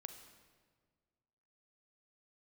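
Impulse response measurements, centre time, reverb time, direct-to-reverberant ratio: 23 ms, 1.7 s, 7.0 dB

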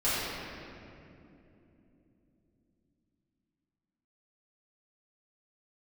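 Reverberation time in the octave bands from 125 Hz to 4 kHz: 4.9, 5.1, 3.6, 2.4, 2.2, 1.6 seconds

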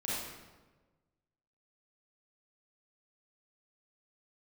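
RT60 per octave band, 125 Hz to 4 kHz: 1.7, 1.4, 1.4, 1.2, 1.0, 0.85 seconds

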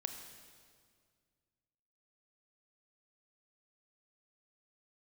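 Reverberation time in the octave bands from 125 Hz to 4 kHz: 2.6, 2.3, 2.1, 1.9, 1.7, 1.7 seconds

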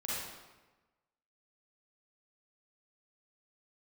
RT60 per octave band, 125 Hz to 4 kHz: 1.3, 1.2, 1.2, 1.2, 1.1, 0.90 seconds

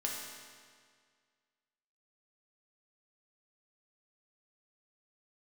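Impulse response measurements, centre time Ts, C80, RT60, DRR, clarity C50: 90 ms, 2.5 dB, 1.9 s, −2.5 dB, 1.0 dB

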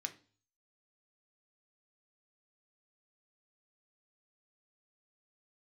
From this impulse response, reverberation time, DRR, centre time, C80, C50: 0.40 s, 5.5 dB, 6 ms, 21.0 dB, 15.5 dB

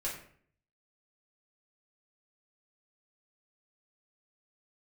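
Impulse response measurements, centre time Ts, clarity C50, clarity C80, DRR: 31 ms, 6.5 dB, 9.5 dB, −6.5 dB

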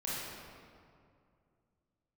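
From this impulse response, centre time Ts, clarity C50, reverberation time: 146 ms, −4.0 dB, 2.4 s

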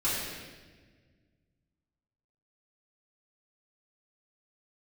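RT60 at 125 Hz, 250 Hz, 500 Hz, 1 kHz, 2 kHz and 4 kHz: 2.6, 2.2, 1.7, 1.2, 1.4, 1.2 seconds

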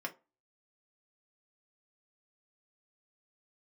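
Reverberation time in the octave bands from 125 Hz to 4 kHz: 0.20, 0.30, 0.30, 0.30, 0.20, 0.15 seconds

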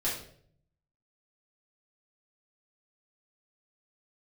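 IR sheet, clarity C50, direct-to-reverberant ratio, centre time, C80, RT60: 4.5 dB, −8.5 dB, 38 ms, 9.0 dB, 0.60 s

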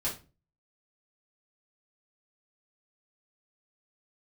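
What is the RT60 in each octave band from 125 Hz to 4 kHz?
0.50, 0.45, 0.35, 0.30, 0.30, 0.25 seconds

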